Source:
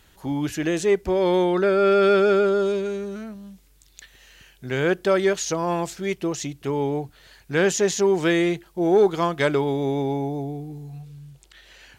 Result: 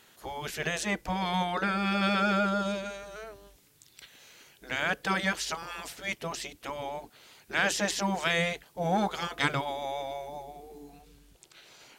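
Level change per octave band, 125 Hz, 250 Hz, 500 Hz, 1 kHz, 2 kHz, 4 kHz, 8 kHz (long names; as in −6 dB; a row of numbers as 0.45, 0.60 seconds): −8.0, −9.5, −15.0, −3.0, −1.0, −0.5, −6.5 decibels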